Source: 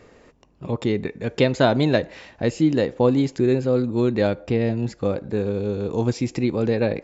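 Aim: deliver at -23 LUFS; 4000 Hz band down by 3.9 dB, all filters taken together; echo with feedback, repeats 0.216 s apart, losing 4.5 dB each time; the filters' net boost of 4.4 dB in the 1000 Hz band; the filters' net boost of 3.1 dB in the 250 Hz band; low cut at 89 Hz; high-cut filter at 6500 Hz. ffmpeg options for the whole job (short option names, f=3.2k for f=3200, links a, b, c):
-af "highpass=89,lowpass=6.5k,equalizer=f=250:t=o:g=3.5,equalizer=f=1k:t=o:g=6,equalizer=f=4k:t=o:g=-4.5,aecho=1:1:216|432|648|864|1080|1296|1512|1728|1944:0.596|0.357|0.214|0.129|0.0772|0.0463|0.0278|0.0167|0.01,volume=-4.5dB"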